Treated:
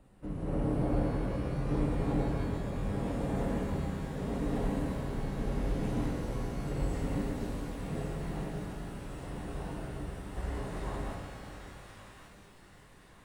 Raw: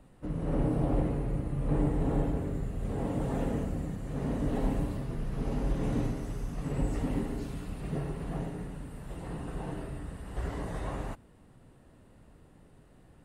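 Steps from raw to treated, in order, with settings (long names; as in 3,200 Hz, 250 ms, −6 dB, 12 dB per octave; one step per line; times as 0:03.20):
delay with a high-pass on its return 1,123 ms, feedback 52%, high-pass 1,400 Hz, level −6 dB
reverb with rising layers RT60 3 s, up +12 semitones, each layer −8 dB, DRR 1 dB
level −4 dB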